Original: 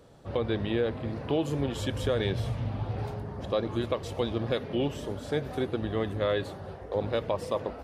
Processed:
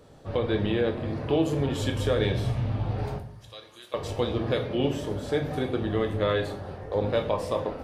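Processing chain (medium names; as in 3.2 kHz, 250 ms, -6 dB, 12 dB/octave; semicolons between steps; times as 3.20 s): 3.18–3.94 s: differentiator; simulated room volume 68 m³, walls mixed, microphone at 0.47 m; trim +1.5 dB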